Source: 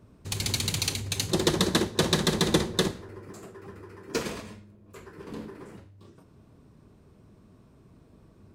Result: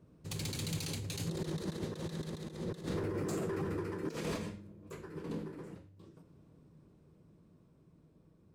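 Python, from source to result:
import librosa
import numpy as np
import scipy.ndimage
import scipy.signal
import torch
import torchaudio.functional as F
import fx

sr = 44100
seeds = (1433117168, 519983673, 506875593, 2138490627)

y = fx.doppler_pass(x, sr, speed_mps=6, closest_m=2.3, pass_at_s=3.35)
y = fx.over_compress(y, sr, threshold_db=-46.0, ratio=-1.0)
y = np.clip(y, -10.0 ** (-37.5 / 20.0), 10.0 ** (-37.5 / 20.0))
y = fx.graphic_eq_31(y, sr, hz=(160, 315, 500), db=(11, 6, 6))
y = y * librosa.db_to_amplitude(3.5)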